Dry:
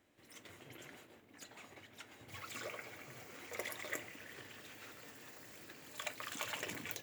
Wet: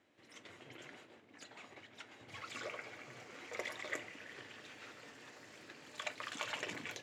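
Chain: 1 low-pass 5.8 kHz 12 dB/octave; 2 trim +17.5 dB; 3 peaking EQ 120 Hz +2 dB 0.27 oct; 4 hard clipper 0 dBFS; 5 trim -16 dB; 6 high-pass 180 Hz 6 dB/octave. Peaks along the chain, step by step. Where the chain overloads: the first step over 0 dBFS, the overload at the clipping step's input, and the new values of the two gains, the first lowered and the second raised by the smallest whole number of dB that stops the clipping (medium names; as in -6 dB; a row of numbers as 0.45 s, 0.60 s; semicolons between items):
-22.5 dBFS, -5.0 dBFS, -5.0 dBFS, -5.0 dBFS, -21.0 dBFS, -21.5 dBFS; nothing clips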